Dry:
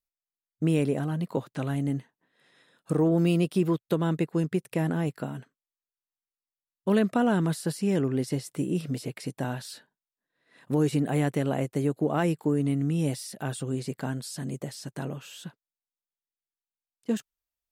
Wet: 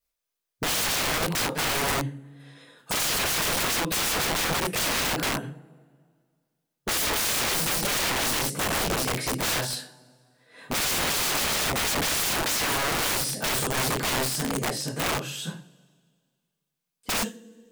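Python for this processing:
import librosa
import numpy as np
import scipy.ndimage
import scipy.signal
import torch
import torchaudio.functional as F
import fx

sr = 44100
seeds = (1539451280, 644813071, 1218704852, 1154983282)

y = fx.rev_double_slope(x, sr, seeds[0], early_s=0.34, late_s=1.9, knee_db=-27, drr_db=-9.5)
y = fx.dynamic_eq(y, sr, hz=760.0, q=0.76, threshold_db=-30.0, ratio=4.0, max_db=7)
y = (np.mod(10.0 ** (21.0 / 20.0) * y + 1.0, 2.0) - 1.0) / 10.0 ** (21.0 / 20.0)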